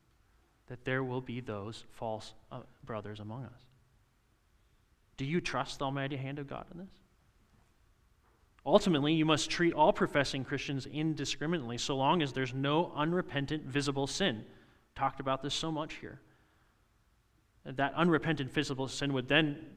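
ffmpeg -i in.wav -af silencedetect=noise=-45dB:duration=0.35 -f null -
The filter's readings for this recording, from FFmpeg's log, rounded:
silence_start: 0.00
silence_end: 0.68 | silence_duration: 0.68
silence_start: 3.52
silence_end: 5.18 | silence_duration: 1.66
silence_start: 6.86
silence_end: 8.59 | silence_duration: 1.73
silence_start: 14.46
silence_end: 14.96 | silence_duration: 0.51
silence_start: 16.16
silence_end: 17.66 | silence_duration: 1.50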